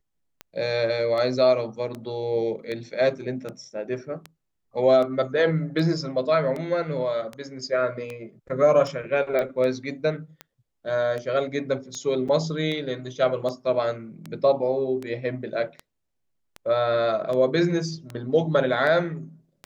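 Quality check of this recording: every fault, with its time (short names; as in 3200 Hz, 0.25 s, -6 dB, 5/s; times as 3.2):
tick 78 rpm -20 dBFS
9.39 pop -14 dBFS
12.28–12.29 gap 5.9 ms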